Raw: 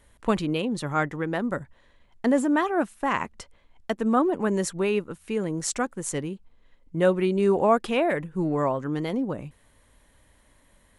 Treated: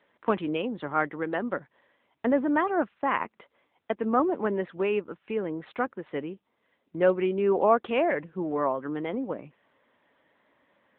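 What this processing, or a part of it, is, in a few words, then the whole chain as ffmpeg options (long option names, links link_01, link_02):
telephone: -af "highpass=270,lowpass=3000" -ar 8000 -c:a libopencore_amrnb -b:a 10200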